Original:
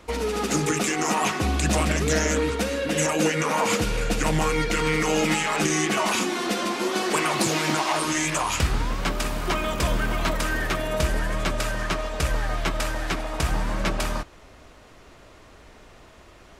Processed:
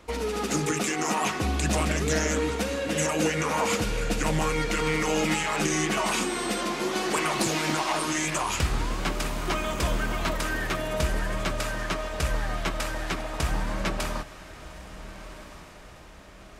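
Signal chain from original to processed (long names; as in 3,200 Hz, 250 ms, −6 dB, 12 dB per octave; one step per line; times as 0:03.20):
0:06.03–0:06.60: steady tone 8,200 Hz −36 dBFS
on a send: feedback delay with all-pass diffusion 1,473 ms, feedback 43%, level −14.5 dB
on the sum: level −3 dB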